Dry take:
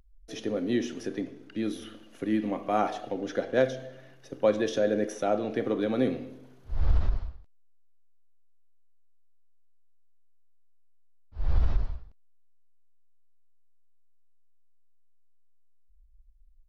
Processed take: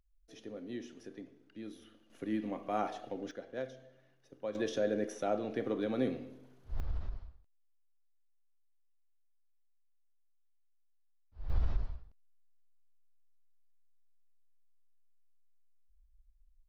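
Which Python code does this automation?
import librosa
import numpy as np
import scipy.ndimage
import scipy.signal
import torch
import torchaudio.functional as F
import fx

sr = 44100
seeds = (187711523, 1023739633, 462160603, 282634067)

y = fx.gain(x, sr, db=fx.steps((0.0, -15.0), (2.1, -8.0), (3.31, -16.0), (4.55, -6.5), (6.8, -13.5), (11.5, -7.0)))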